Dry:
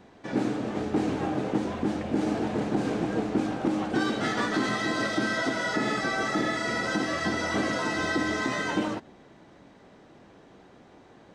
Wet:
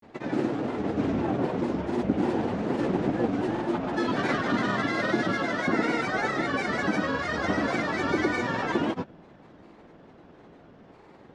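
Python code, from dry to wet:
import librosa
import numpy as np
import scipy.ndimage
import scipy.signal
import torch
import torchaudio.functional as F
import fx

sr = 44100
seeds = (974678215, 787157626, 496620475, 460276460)

y = fx.lowpass(x, sr, hz=2600.0, slope=6)
y = fx.granulator(y, sr, seeds[0], grain_ms=100.0, per_s=20.0, spray_ms=100.0, spread_st=3)
y = F.gain(torch.from_numpy(y), 3.0).numpy()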